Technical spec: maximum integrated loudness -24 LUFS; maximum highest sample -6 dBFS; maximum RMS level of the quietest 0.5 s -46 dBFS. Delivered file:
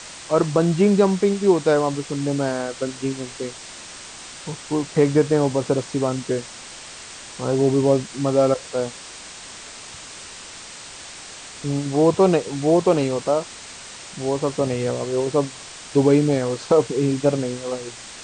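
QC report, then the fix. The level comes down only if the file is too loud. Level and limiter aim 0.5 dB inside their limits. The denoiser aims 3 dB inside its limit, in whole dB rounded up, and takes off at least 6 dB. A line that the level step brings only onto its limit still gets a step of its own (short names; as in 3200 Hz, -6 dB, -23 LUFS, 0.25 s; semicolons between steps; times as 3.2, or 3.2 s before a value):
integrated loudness -21.0 LUFS: fail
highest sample -5.0 dBFS: fail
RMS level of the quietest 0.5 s -39 dBFS: fail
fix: denoiser 7 dB, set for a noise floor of -39 dBFS; gain -3.5 dB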